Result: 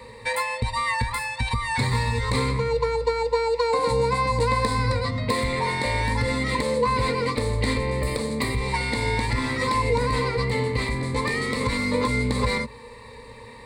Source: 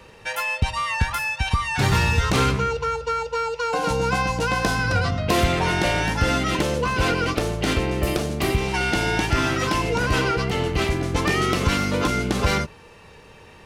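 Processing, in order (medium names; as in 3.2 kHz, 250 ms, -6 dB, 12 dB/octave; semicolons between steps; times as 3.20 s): compression, threshold -24 dBFS, peak gain reduction 9.5 dB; rippled EQ curve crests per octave 0.97, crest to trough 17 dB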